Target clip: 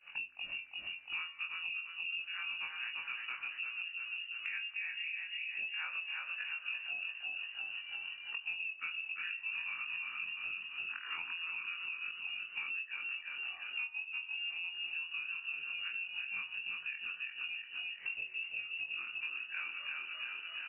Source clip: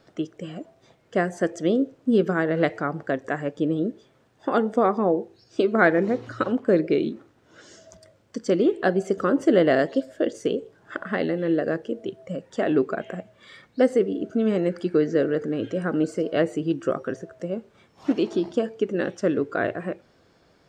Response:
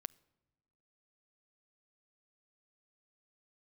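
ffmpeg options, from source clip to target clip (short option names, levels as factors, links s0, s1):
-filter_complex "[0:a]afftfilt=real='re':imag='-im':win_size=2048:overlap=0.75,lowpass=f=2600:t=q:w=0.5098,lowpass=f=2600:t=q:w=0.6013,lowpass=f=2600:t=q:w=0.9,lowpass=f=2600:t=q:w=2.563,afreqshift=-3000,agate=range=0.0224:threshold=0.00112:ratio=3:detection=peak,bandreject=f=61.88:t=h:w=4,bandreject=f=123.76:t=h:w=4,bandreject=f=185.64:t=h:w=4,bandreject=f=247.52:t=h:w=4,bandreject=f=309.4:t=h:w=4,bandreject=f=371.28:t=h:w=4,bandreject=f=433.16:t=h:w=4,bandreject=f=495.04:t=h:w=4,bandreject=f=556.92:t=h:w=4,bandreject=f=618.8:t=h:w=4,bandreject=f=680.68:t=h:w=4,bandreject=f=742.56:t=h:w=4,bandreject=f=804.44:t=h:w=4,bandreject=f=866.32:t=h:w=4,bandreject=f=928.2:t=h:w=4,bandreject=f=990.08:t=h:w=4,bandreject=f=1051.96:t=h:w=4,bandreject=f=1113.84:t=h:w=4,bandreject=f=1175.72:t=h:w=4,bandreject=f=1237.6:t=h:w=4,bandreject=f=1299.48:t=h:w=4,bandreject=f=1361.36:t=h:w=4,bandreject=f=1423.24:t=h:w=4,bandreject=f=1485.12:t=h:w=4,bandreject=f=1547:t=h:w=4,bandreject=f=1608.88:t=h:w=4,bandreject=f=1670.76:t=h:w=4,bandreject=f=1732.64:t=h:w=4,bandreject=f=1794.52:t=h:w=4,bandreject=f=1856.4:t=h:w=4,bandreject=f=1918.28:t=h:w=4,bandreject=f=1980.16:t=h:w=4,bandreject=f=2042.04:t=h:w=4,bandreject=f=2103.92:t=h:w=4,bandreject=f=2165.8:t=h:w=4,asplit=2[s0][s1];[s1]asplit=5[s2][s3][s4][s5][s6];[s2]adelay=343,afreqshift=34,volume=0.562[s7];[s3]adelay=686,afreqshift=68,volume=0.243[s8];[s4]adelay=1029,afreqshift=102,volume=0.104[s9];[s5]adelay=1372,afreqshift=136,volume=0.0447[s10];[s6]adelay=1715,afreqshift=170,volume=0.0193[s11];[s7][s8][s9][s10][s11]amix=inputs=5:normalize=0[s12];[s0][s12]amix=inputs=2:normalize=0,acompressor=threshold=0.00447:ratio=8,volume=2.37"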